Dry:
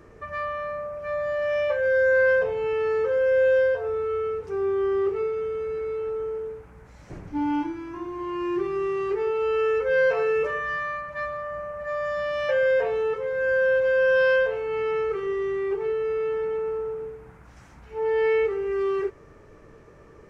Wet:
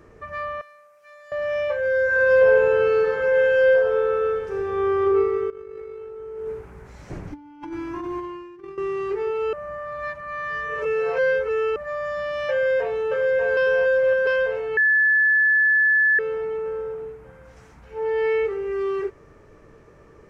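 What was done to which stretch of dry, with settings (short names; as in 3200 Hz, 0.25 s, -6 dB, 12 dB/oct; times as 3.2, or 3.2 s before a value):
0.61–1.32 differentiator
2.03–4.99 reverb throw, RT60 2.4 s, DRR -3.5 dB
5.5–8.78 negative-ratio compressor -33 dBFS, ratio -0.5
9.53–11.76 reverse
12.52–12.99 echo throw 0.59 s, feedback 65%, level -3.5 dB
13.57–14.27 reverse
14.77–16.19 bleep 1730 Hz -14.5 dBFS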